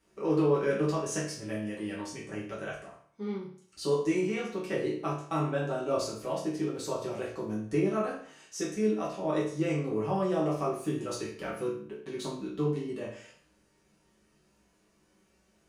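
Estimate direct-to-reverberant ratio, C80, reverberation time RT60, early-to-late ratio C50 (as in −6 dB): −7.0 dB, 9.0 dB, 0.55 s, 4.5 dB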